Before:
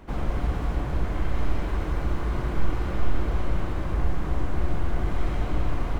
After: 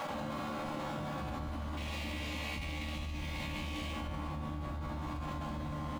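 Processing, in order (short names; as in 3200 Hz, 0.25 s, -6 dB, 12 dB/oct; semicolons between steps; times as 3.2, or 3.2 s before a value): median filter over 25 samples; de-hum 55.07 Hz, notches 2; spectral gate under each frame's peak -15 dB weak; bell 400 Hz -13.5 dB 0.6 oct; comb 3.6 ms, depth 45%; 1.77–3.93 resonant high shelf 1800 Hz +8.5 dB, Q 3; resonator 75 Hz, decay 1.2 s, harmonics all, mix 90%; darkening echo 0.199 s, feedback 77%, low-pass 2000 Hz, level -7 dB; fast leveller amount 100%; gain +1 dB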